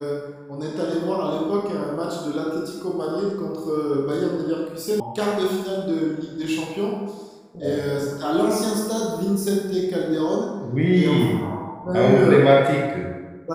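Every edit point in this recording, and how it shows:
5.00 s: sound stops dead

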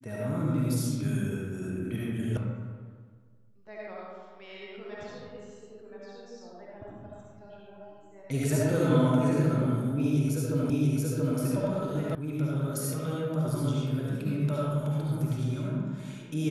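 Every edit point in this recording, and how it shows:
2.37 s: sound stops dead
10.70 s: repeat of the last 0.68 s
12.15 s: sound stops dead

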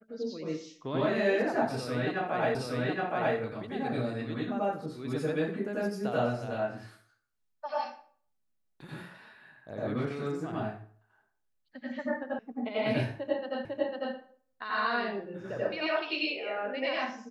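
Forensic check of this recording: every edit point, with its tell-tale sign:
2.55 s: repeat of the last 0.82 s
12.39 s: sound stops dead
13.65 s: repeat of the last 0.5 s

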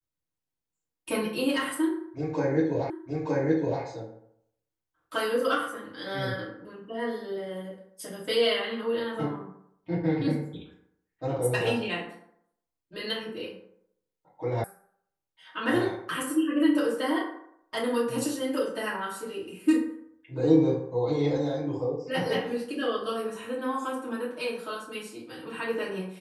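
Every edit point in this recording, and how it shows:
2.90 s: repeat of the last 0.92 s
14.64 s: sound stops dead

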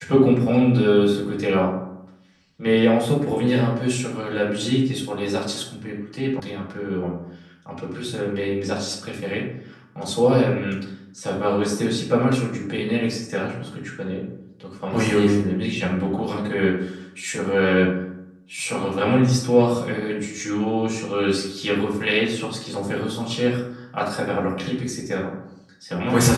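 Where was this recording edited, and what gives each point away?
6.40 s: sound stops dead

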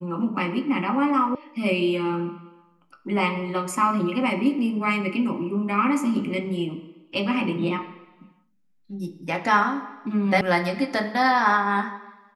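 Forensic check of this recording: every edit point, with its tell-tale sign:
1.35 s: sound stops dead
10.41 s: sound stops dead

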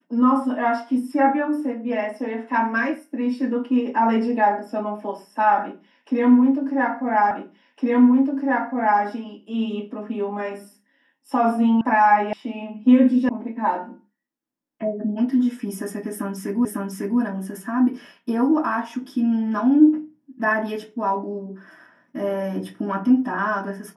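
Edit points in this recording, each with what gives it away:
7.31 s: repeat of the last 1.71 s
11.81 s: sound stops dead
12.33 s: sound stops dead
13.29 s: sound stops dead
16.65 s: repeat of the last 0.55 s

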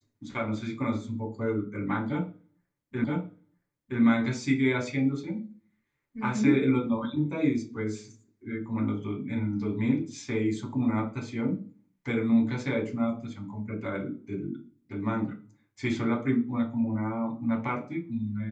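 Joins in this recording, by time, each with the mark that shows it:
3.04 s: repeat of the last 0.97 s

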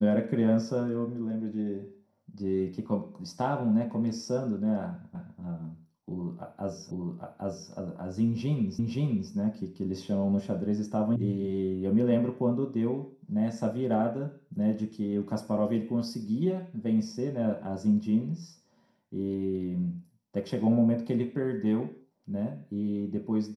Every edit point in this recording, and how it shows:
5.15 s: repeat of the last 0.25 s
6.91 s: repeat of the last 0.81 s
8.79 s: repeat of the last 0.52 s
11.16 s: sound stops dead

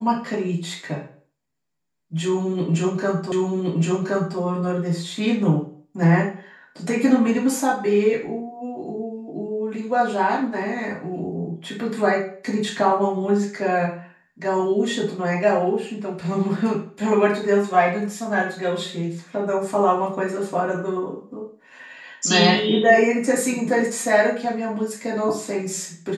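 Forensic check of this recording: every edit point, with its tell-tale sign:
3.32 s: repeat of the last 1.07 s

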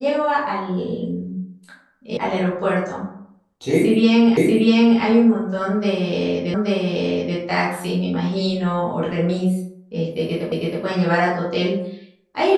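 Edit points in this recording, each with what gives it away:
2.17 s: sound stops dead
4.37 s: repeat of the last 0.64 s
6.54 s: repeat of the last 0.83 s
10.52 s: repeat of the last 0.32 s

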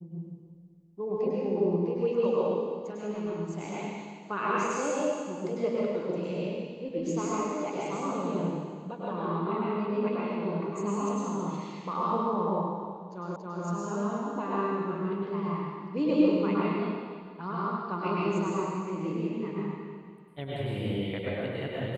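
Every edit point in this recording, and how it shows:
13.36 s: repeat of the last 0.28 s

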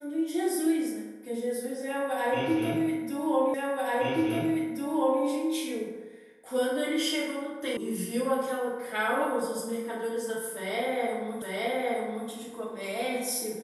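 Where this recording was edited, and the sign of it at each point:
3.54 s: repeat of the last 1.68 s
7.77 s: sound stops dead
11.42 s: repeat of the last 0.87 s

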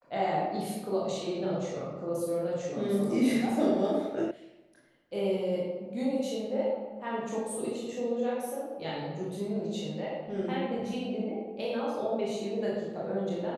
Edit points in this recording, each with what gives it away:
4.31 s: sound stops dead

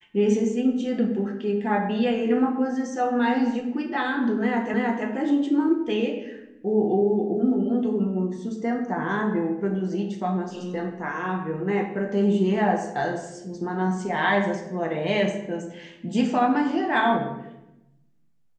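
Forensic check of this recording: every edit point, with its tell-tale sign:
4.74 s: repeat of the last 0.32 s

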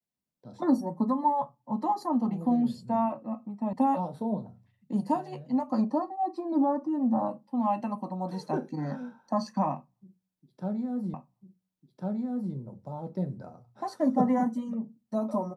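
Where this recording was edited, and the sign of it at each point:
3.73 s: sound stops dead
11.14 s: repeat of the last 1.4 s

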